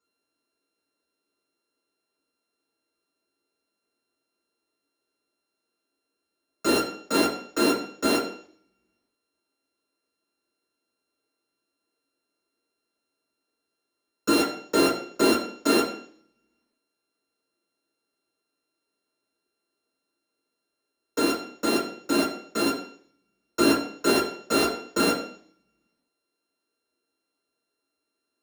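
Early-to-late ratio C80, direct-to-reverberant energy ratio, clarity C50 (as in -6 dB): 9.5 dB, -7.0 dB, 5.0 dB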